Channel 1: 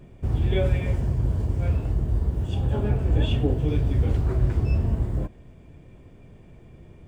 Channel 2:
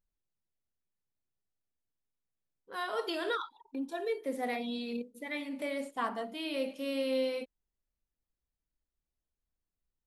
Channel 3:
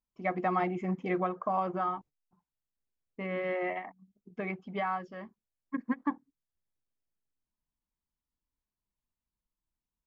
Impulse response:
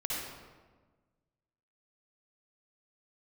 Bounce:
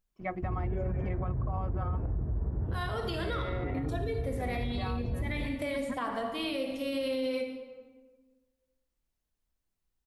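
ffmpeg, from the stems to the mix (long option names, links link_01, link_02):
-filter_complex "[0:a]lowpass=frequency=1600:width=0.5412,lowpass=frequency=1600:width=1.3066,adelay=200,volume=-4.5dB,asplit=2[link_01][link_02];[link_02]volume=-17.5dB[link_03];[1:a]volume=1.5dB,asplit=3[link_04][link_05][link_06];[link_05]volume=-8.5dB[link_07];[2:a]aecho=1:1:5.4:0.4,volume=-6dB[link_08];[link_06]apad=whole_len=320636[link_09];[link_01][link_09]sidechaincompress=threshold=-35dB:ratio=8:attack=16:release=1340[link_10];[3:a]atrim=start_sample=2205[link_11];[link_03][link_07]amix=inputs=2:normalize=0[link_12];[link_12][link_11]afir=irnorm=-1:irlink=0[link_13];[link_10][link_04][link_08][link_13]amix=inputs=4:normalize=0,alimiter=level_in=0.5dB:limit=-24dB:level=0:latency=1:release=87,volume=-0.5dB"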